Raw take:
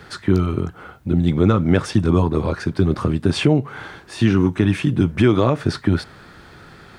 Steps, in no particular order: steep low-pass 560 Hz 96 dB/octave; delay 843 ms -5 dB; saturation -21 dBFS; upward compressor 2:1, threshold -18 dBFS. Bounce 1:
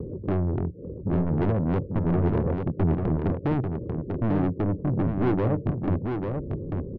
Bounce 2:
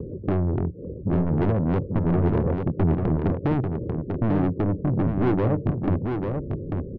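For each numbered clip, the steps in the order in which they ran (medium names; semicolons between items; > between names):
steep low-pass > upward compressor > saturation > delay; steep low-pass > saturation > upward compressor > delay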